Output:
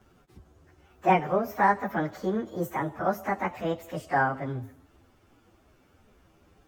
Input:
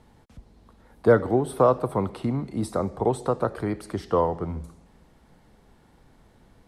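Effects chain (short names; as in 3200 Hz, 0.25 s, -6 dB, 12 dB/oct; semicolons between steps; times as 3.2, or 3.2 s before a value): pitch shift by moving bins +8 st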